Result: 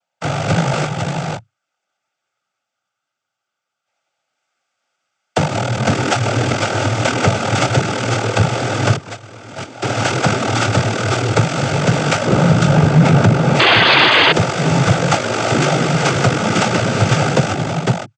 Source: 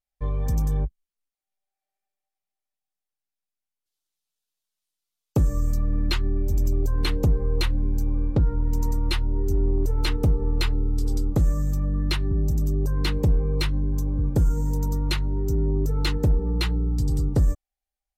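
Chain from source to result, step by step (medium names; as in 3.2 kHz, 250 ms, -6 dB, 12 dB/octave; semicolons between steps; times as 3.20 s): sorted samples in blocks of 64 samples; compression 6:1, threshold -19 dBFS, peak gain reduction 4.5 dB; 12.25–13.56 s: tilt EQ -2.5 dB/octave; on a send: delay 503 ms -4 dB; 8.96–9.82 s: on the sum: gate -18 dBFS, range -18 dB; 13.59–14.32 s: painted sound noise 270–3700 Hz -14 dBFS; noise-vocoded speech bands 16; loudness maximiser +15 dB; trim -1 dB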